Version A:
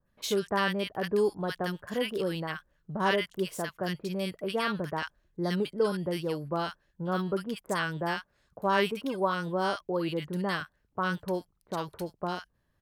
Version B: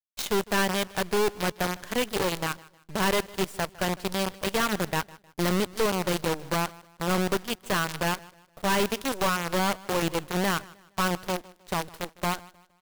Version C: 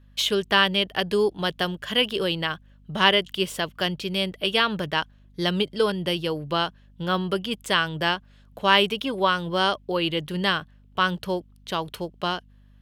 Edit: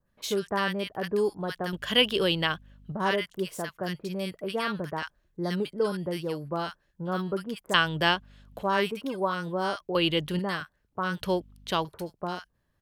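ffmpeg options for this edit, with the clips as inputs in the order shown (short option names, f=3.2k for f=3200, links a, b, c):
-filter_complex "[2:a]asplit=4[a][b][c][d];[0:a]asplit=5[e][f][g][h][i];[e]atrim=end=1.732[j];[a]atrim=start=1.728:end=2.922[k];[f]atrim=start=2.918:end=7.742[l];[b]atrim=start=7.738:end=8.632[m];[g]atrim=start=8.628:end=9.952[n];[c]atrim=start=9.948:end=10.392[o];[h]atrim=start=10.388:end=11.212[p];[d]atrim=start=11.208:end=11.852[q];[i]atrim=start=11.848[r];[j][k]acrossfade=d=0.004:c1=hsin:c2=hsin[s];[s][l]acrossfade=d=0.004:c1=hsin:c2=hsin[t];[t][m]acrossfade=d=0.004:c1=hsin:c2=hsin[u];[u][n]acrossfade=d=0.004:c1=hsin:c2=hsin[v];[v][o]acrossfade=d=0.004:c1=hsin:c2=hsin[w];[w][p]acrossfade=d=0.004:c1=hsin:c2=hsin[x];[x][q]acrossfade=d=0.004:c1=hsin:c2=hsin[y];[y][r]acrossfade=d=0.004:c1=hsin:c2=hsin"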